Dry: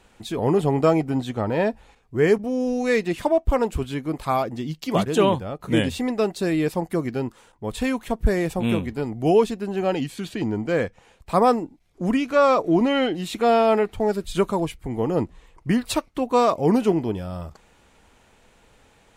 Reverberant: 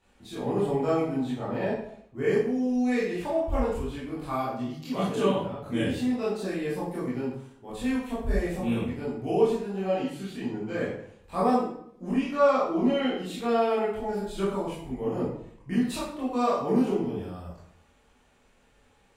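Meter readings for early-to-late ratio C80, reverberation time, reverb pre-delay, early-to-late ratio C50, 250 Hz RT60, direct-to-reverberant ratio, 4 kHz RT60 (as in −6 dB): 5.5 dB, 0.65 s, 18 ms, 1.5 dB, 0.75 s, −9.5 dB, 0.50 s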